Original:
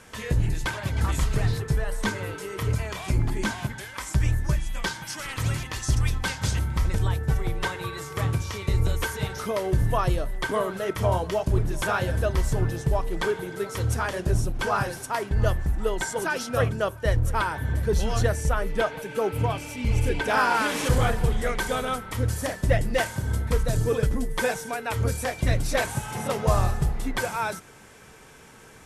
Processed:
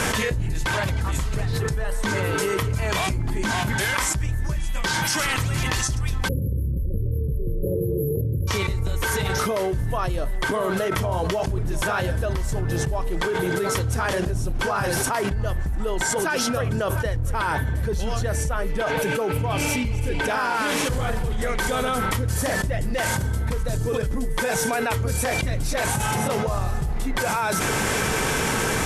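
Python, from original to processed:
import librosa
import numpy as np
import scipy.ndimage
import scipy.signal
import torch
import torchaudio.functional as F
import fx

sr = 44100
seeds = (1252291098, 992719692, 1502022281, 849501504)

y = fx.brickwall_bandstop(x, sr, low_hz=580.0, high_hz=11000.0, at=(6.27, 8.47), fade=0.02)
y = fx.env_flatten(y, sr, amount_pct=100)
y = y * librosa.db_to_amplitude(-7.0)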